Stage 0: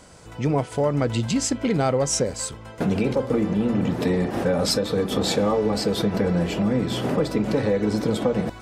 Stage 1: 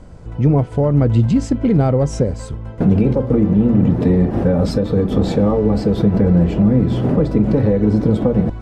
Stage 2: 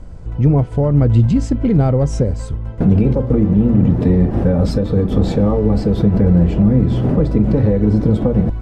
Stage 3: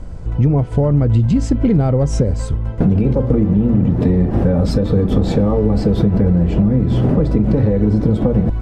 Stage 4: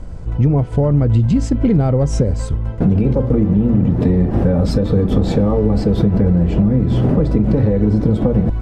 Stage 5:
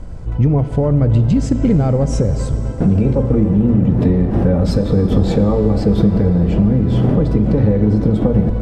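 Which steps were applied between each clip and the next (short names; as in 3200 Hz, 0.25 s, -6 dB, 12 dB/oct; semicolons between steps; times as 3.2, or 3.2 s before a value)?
tilt -4 dB/oct
low shelf 87 Hz +11 dB; gain -1.5 dB
compressor, threshold -14 dBFS, peak gain reduction 7.5 dB; gain +4 dB
attack slew limiter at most 330 dB/s
plate-style reverb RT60 4.8 s, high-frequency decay 0.7×, DRR 9.5 dB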